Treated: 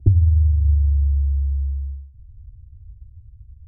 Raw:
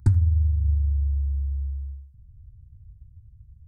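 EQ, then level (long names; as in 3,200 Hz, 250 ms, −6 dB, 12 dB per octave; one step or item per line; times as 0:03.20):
elliptic low-pass filter 700 Hz, stop band 40 dB
phaser with its sweep stopped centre 440 Hz, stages 4
+8.5 dB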